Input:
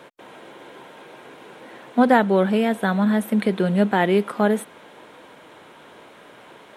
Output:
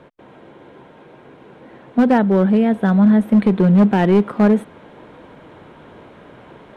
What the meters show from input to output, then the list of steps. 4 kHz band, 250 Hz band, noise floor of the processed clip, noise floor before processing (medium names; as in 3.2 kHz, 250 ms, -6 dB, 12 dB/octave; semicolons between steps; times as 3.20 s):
no reading, +7.0 dB, -45 dBFS, -47 dBFS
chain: gain riding 2 s; RIAA curve playback; hard clipper -7.5 dBFS, distortion -18 dB